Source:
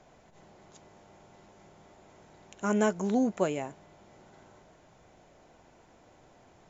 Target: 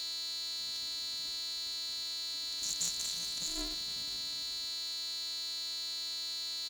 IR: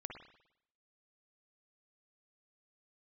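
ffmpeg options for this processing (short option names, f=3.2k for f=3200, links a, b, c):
-filter_complex "[0:a]asplit=2[a][b];[b]acompressor=threshold=-41dB:ratio=6,volume=0dB[c];[a][c]amix=inputs=2:normalize=0,lowshelf=f=150:g=-6.5,asplit=6[d][e][f][g][h][i];[e]adelay=235,afreqshift=49,volume=-8dB[j];[f]adelay=470,afreqshift=98,volume=-14.6dB[k];[g]adelay=705,afreqshift=147,volume=-21.1dB[l];[h]adelay=940,afreqshift=196,volume=-27.7dB[m];[i]adelay=1175,afreqshift=245,volume=-34.2dB[n];[d][j][k][l][m][n]amix=inputs=6:normalize=0,acrusher=bits=7:mix=0:aa=0.5,acontrast=71,agate=range=-33dB:threshold=-36dB:ratio=3:detection=peak,aeval=exprs='val(0)+0.0141*sin(2*PI*4200*n/s)':c=same,afftfilt=real='re*(1-between(b*sr/4096,150,3400))':imag='im*(1-between(b*sr/4096,150,3400))':win_size=4096:overlap=0.75,afwtdn=0.00562,bandreject=f=50:t=h:w=6,bandreject=f=100:t=h:w=6,bandreject=f=150:t=h:w=6,bandreject=f=200:t=h:w=6,bandreject=f=250:t=h:w=6,bandreject=f=300:t=h:w=6,aeval=exprs='val(0)*sgn(sin(2*PI*170*n/s))':c=same,volume=1.5dB"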